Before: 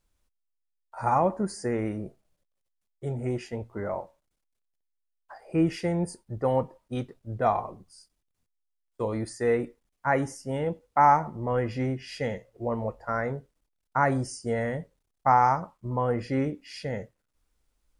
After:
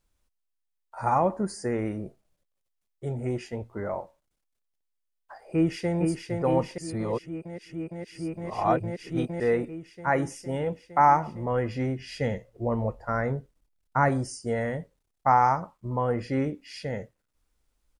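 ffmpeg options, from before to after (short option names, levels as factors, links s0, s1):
-filter_complex "[0:a]asplit=2[s0][s1];[s1]afade=t=in:st=5.45:d=0.01,afade=t=out:st=5.96:d=0.01,aecho=0:1:460|920|1380|1840|2300|2760|3220|3680|4140|4600|5060|5520:0.595662|0.506313|0.430366|0.365811|0.310939|0.264298|0.224654|0.190956|0.162312|0.137965|0.117271|0.09968[s2];[s0][s2]amix=inputs=2:normalize=0,asettb=1/sr,asplit=3[s3][s4][s5];[s3]atrim=end=11.994[s6];[s4]atrim=start=11.99:end=14.09,asetpts=PTS-STARTPTS,afade=t=in:d=0.004:c=qsin,afade=t=out:st=2.096:d=0.004:c=qsin,lowshelf=f=210:g=7[s7];[s5]atrim=start=14.086[s8];[s6][s7]acrossfade=d=0.004:c1=hsin:c2=qsin[s9];[s9][s8]acrossfade=d=0.004:c1=qsin:c2=hsin,asplit=3[s10][s11][s12];[s10]atrim=end=6.782[s13];[s11]atrim=start=6.778:end=9.402,asetpts=PTS-STARTPTS,areverse[s14];[s12]atrim=start=9.398[s15];[s13][s14]acrossfade=d=0.004:c1=hsin:c2=hsin[s16];[s16][s15]acrossfade=d=0.004:c1=hsin:c2=hsin"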